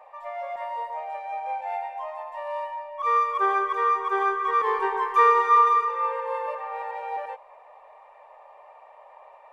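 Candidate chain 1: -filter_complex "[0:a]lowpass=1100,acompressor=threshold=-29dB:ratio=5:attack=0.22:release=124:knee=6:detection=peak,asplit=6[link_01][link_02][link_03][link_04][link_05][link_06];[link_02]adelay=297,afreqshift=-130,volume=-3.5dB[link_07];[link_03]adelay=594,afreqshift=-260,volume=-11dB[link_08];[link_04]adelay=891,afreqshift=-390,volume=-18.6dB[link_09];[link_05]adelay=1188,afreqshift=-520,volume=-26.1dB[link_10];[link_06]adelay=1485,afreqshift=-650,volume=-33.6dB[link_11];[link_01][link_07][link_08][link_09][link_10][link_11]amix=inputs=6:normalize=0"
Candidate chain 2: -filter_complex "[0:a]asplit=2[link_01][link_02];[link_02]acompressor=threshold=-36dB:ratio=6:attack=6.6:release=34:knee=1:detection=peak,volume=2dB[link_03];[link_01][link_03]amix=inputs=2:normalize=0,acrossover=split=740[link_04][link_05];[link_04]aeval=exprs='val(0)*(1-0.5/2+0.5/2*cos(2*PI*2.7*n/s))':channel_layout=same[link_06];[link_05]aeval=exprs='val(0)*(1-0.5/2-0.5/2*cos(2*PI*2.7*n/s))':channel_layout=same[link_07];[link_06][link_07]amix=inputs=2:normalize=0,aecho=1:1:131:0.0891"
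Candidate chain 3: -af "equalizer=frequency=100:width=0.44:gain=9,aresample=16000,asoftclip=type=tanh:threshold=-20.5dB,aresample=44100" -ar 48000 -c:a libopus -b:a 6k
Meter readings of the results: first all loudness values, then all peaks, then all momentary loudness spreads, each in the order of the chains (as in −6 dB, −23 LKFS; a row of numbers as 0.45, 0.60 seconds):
−33.5, −25.0, −29.0 LKFS; −20.0, −9.5, −13.5 dBFS; 19, 12, 14 LU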